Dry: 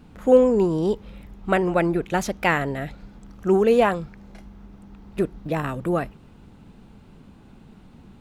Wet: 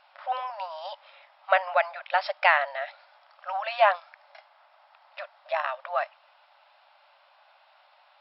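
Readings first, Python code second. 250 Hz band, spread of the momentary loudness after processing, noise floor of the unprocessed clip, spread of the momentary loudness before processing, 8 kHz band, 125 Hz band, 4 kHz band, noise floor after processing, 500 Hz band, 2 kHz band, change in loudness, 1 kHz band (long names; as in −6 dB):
below −40 dB, 19 LU, −49 dBFS, 15 LU, below −35 dB, below −40 dB, +1.5 dB, −61 dBFS, −10.0 dB, +1.5 dB, −5.0 dB, +1.5 dB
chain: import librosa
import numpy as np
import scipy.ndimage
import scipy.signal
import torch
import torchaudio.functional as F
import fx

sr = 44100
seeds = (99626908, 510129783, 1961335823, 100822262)

y = fx.brickwall_bandpass(x, sr, low_hz=550.0, high_hz=5500.0)
y = F.gain(torch.from_numpy(y), 1.5).numpy()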